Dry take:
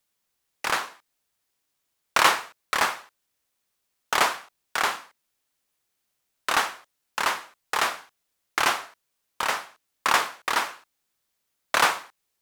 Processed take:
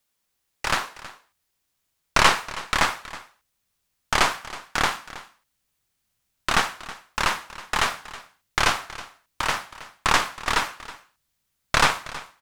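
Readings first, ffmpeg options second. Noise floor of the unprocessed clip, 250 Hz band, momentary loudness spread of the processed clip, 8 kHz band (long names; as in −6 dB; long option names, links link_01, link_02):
−78 dBFS, +6.0 dB, 21 LU, +1.5 dB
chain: -filter_complex "[0:a]asubboost=boost=3.5:cutoff=190,aeval=exprs='0.631*(cos(1*acos(clip(val(0)/0.631,-1,1)))-cos(1*PI/2))+0.1*(cos(6*acos(clip(val(0)/0.631,-1,1)))-cos(6*PI/2))':channel_layout=same,acrossover=split=9600[link_01][link_02];[link_02]acompressor=threshold=-44dB:ratio=4:attack=1:release=60[link_03];[link_01][link_03]amix=inputs=2:normalize=0,aecho=1:1:321:0.141,volume=1.5dB"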